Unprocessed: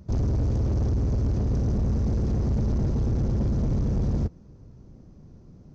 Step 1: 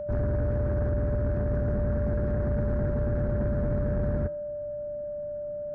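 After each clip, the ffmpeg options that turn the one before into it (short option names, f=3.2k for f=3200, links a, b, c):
-af "lowpass=f=1.6k:t=q:w=5.8,bandreject=f=160.2:t=h:w=4,bandreject=f=320.4:t=h:w=4,bandreject=f=480.6:t=h:w=4,bandreject=f=640.8:t=h:w=4,bandreject=f=801:t=h:w=4,bandreject=f=961.2:t=h:w=4,bandreject=f=1.1214k:t=h:w=4,bandreject=f=1.2816k:t=h:w=4,bandreject=f=1.4418k:t=h:w=4,bandreject=f=1.602k:t=h:w=4,bandreject=f=1.7622k:t=h:w=4,bandreject=f=1.9224k:t=h:w=4,bandreject=f=2.0826k:t=h:w=4,aeval=exprs='val(0)+0.0398*sin(2*PI*590*n/s)':c=same,volume=-3.5dB"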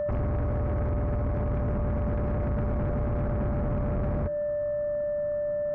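-af "acompressor=threshold=-28dB:ratio=6,aeval=exprs='0.0596*sin(PI/2*1.41*val(0)/0.0596)':c=same"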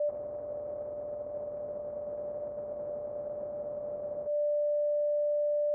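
-af "bandpass=f=580:t=q:w=6.1:csg=0" -ar 22050 -c:a libvorbis -b:a 64k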